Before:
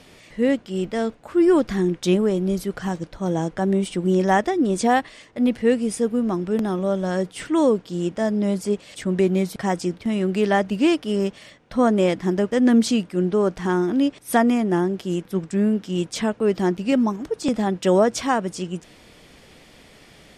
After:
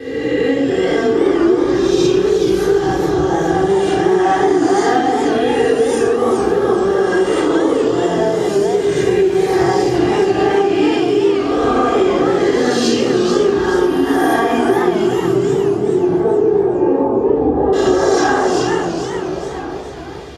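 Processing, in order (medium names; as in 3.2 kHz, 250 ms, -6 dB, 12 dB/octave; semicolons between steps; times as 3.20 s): reverse spectral sustain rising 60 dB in 1.64 s; gate with hold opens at -35 dBFS; comb 2.5 ms, depth 87%; echo from a far wall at 230 m, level -18 dB; flange 0.24 Hz, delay 8.4 ms, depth 9.9 ms, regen -49%; 15.51–17.73 s: Chebyshev low-pass 730 Hz, order 2; reverberation RT60 1.0 s, pre-delay 3 ms, DRR -4.5 dB; compression, threshold -7 dBFS, peak gain reduction 12.5 dB; modulated delay 427 ms, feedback 44%, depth 177 cents, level -6 dB; trim -4.5 dB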